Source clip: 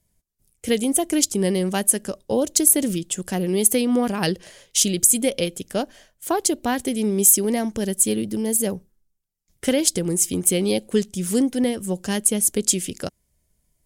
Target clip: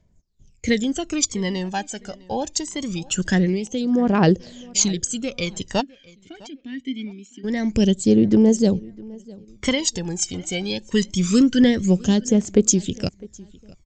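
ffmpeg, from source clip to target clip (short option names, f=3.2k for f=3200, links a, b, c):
-filter_complex "[0:a]aphaser=in_gain=1:out_gain=1:delay=1.4:decay=0.73:speed=0.24:type=triangular,dynaudnorm=f=200:g=3:m=9dB,asplit=3[a][b][c];[a]afade=t=out:st=5.8:d=0.02[d];[b]asplit=3[e][f][g];[e]bandpass=f=270:t=q:w=8,volume=0dB[h];[f]bandpass=f=2.29k:t=q:w=8,volume=-6dB[i];[g]bandpass=f=3.01k:t=q:w=8,volume=-9dB[j];[h][i][j]amix=inputs=3:normalize=0,afade=t=in:st=5.8:d=0.02,afade=t=out:st=7.43:d=0.02[k];[c]afade=t=in:st=7.43:d=0.02[l];[d][k][l]amix=inputs=3:normalize=0,asettb=1/sr,asplit=3[m][n][o];[m]atrim=end=10.624[p];[n]atrim=start=10.62:end=11.63,asetpts=PTS-STARTPTS,afade=t=in:d=0.004:c=qsin,afade=t=out:st=1.006:d=0.004:c=qsin,equalizer=f=750:w=3.2:g=-13.5[q];[o]atrim=start=11.626[r];[p][q]acrossfade=d=0.004:c1=hsin:c2=qsin[s];[s][r]acrossfade=d=0.004:c1=qsin:c2=hsin,asplit=2[t][u];[u]adelay=656,lowpass=f=3.9k:p=1,volume=-22.5dB,asplit=2[v][w];[w]adelay=656,lowpass=f=3.9k:p=1,volume=0.29[x];[v][x]amix=inputs=2:normalize=0[y];[t][y]amix=inputs=2:normalize=0,aresample=16000,aresample=44100,volume=-2dB"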